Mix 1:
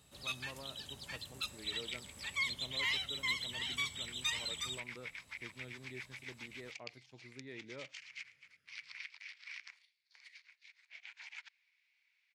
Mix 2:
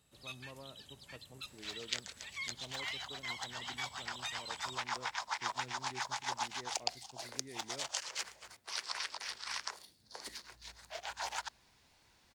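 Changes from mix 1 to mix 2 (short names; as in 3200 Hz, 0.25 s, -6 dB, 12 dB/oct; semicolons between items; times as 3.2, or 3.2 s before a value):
speech: add high shelf 2100 Hz -10.5 dB; first sound -7.0 dB; second sound: remove ladder band-pass 2400 Hz, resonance 75%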